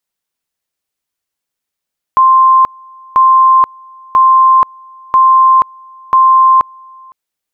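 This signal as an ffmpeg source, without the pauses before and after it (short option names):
-f lavfi -i "aevalsrc='pow(10,(-3.5-29.5*gte(mod(t,0.99),0.48))/20)*sin(2*PI*1050*t)':d=4.95:s=44100"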